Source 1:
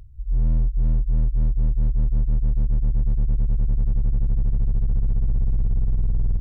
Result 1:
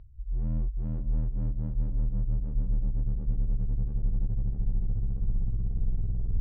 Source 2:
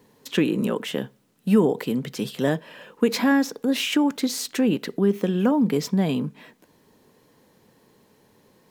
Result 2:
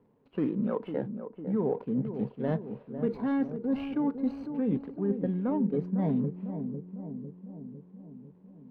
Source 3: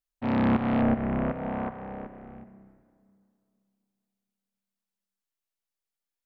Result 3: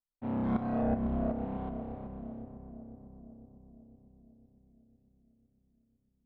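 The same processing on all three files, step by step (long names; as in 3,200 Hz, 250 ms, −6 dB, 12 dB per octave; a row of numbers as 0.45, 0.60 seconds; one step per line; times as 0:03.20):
running median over 25 samples
noise reduction from a noise print of the clip's start 8 dB
dynamic equaliser 3,200 Hz, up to −4 dB, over −52 dBFS, Q 1.3
reversed playback
downward compressor 6 to 1, threshold −27 dBFS
reversed playback
high-frequency loss of the air 400 metres
on a send: feedback echo with a low-pass in the loop 502 ms, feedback 64%, low-pass 810 Hz, level −8 dB
on the sum: level +1.5 dB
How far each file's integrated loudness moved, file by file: −8.0, −8.0, −7.5 LU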